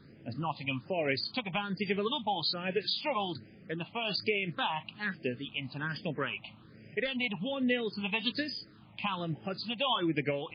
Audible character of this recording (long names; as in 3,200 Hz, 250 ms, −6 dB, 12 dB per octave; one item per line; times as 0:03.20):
phaser sweep stages 6, 1.2 Hz, lowest notch 400–1,100 Hz
MP3